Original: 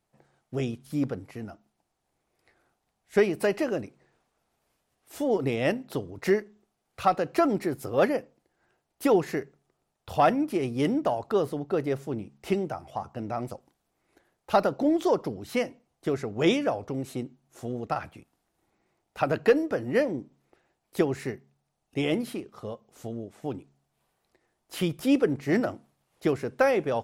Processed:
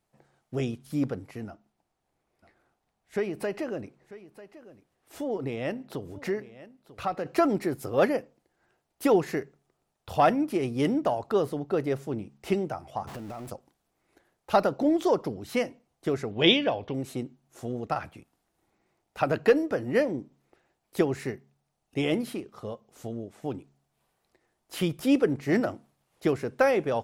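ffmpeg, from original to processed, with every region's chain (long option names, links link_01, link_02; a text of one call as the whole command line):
ffmpeg -i in.wav -filter_complex "[0:a]asettb=1/sr,asplit=3[link_01][link_02][link_03];[link_01]atrim=end=1.484[link_04];[link_02]atrim=start=1.48:end=7.26,asetpts=PTS-STARTPTS,afade=type=in:duration=0.004:curve=qsin,afade=type=out:start_time=5.776:duration=0.004:curve=qsin,highshelf=frequency=4100:gain=-6,acompressor=threshold=-36dB:ratio=1.5:attack=3.2:release=140:knee=1:detection=peak,aecho=1:1:944:0.141,atrim=end_sample=254898[link_05];[link_03]atrim=start=7.256[link_06];[link_04][link_05]acrossfade=duration=0.004:curve1=hsin:curve2=qsin[link_07];[link_07][link_06]acrossfade=duration=0.004:curve1=qsin:curve2=hsin,asettb=1/sr,asplit=3[link_08][link_09][link_10];[link_08]atrim=end=13.074[link_11];[link_09]atrim=start=13.07:end=13.5,asetpts=PTS-STARTPTS,afade=type=in:duration=0.004:curve=qsin,afade=type=out:start_time=0.426:duration=0.004:curve=qsin,aeval=exprs='val(0)+0.5*0.015*sgn(val(0))':channel_layout=same,acompressor=threshold=-35dB:ratio=6:attack=3.2:release=140:knee=1:detection=peak[link_12];[link_10]atrim=start=13.496[link_13];[link_11][link_12]acrossfade=duration=0.004:curve1=hsin:curve2=qsin[link_14];[link_14][link_13]acrossfade=duration=0.004:curve1=qsin:curve2=hsin,asettb=1/sr,asplit=3[link_15][link_16][link_17];[link_15]atrim=end=16.314[link_18];[link_16]atrim=start=16.31:end=16.94,asetpts=PTS-STARTPTS,afade=type=in:duration=0.004:curve=qsin,afade=type=out:start_time=0.626:duration=0.004:curve=qsin,lowpass=frequency=3300:width_type=q:width=4.4,bandreject=frequency=1300:width=5.3[link_19];[link_17]atrim=start=16.936[link_20];[link_18][link_19]acrossfade=duration=0.004:curve1=hsin:curve2=qsin[link_21];[link_21][link_20]acrossfade=duration=0.004:curve1=qsin:curve2=hsin" out.wav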